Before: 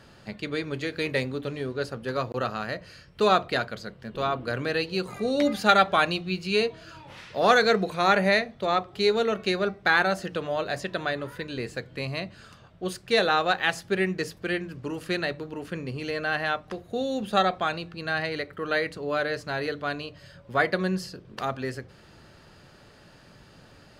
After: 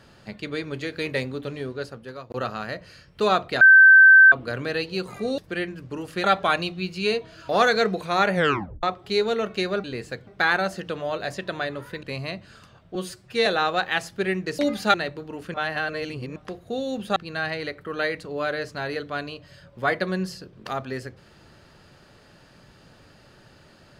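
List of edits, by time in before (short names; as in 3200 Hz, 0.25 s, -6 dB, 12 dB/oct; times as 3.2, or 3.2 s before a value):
1.64–2.3 fade out, to -16 dB
3.61–4.32 bleep 1550 Hz -7.5 dBFS
5.38–5.73 swap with 14.31–15.17
6.98–7.38 cut
8.23 tape stop 0.49 s
11.49–11.92 move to 9.73
12.84–13.18 stretch 1.5×
15.77–16.59 reverse
17.39–17.88 cut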